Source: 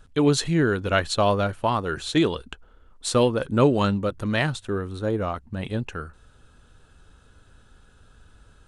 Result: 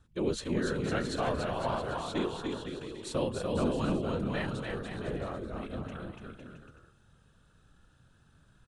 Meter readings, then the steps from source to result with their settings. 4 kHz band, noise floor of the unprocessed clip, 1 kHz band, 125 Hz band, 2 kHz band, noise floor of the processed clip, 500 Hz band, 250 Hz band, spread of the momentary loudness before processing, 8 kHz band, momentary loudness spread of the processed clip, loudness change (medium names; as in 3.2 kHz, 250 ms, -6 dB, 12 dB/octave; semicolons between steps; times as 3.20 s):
-11.0 dB, -55 dBFS, -10.0 dB, -10.5 dB, -10.5 dB, -64 dBFS, -9.5 dB, -9.0 dB, 11 LU, -12.0 dB, 11 LU, -10.0 dB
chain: bouncing-ball echo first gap 290 ms, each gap 0.75×, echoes 5; whisper effect; harmonic-percussive split percussive -7 dB; trim -8.5 dB